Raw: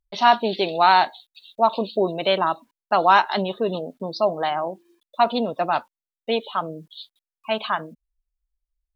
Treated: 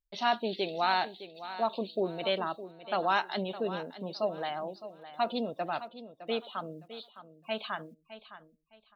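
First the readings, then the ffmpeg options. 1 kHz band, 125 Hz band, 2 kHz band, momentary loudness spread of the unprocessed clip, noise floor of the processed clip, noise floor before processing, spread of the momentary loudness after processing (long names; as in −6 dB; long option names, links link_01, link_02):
−13.0 dB, −9.0 dB, −10.0 dB, 16 LU, −70 dBFS, below −85 dBFS, 17 LU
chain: -filter_complex "[0:a]equalizer=frequency=990:width_type=o:width=0.7:gain=-6,asplit=2[link_01][link_02];[link_02]aecho=0:1:611|1222|1833:0.211|0.0528|0.0132[link_03];[link_01][link_03]amix=inputs=2:normalize=0,volume=-9dB"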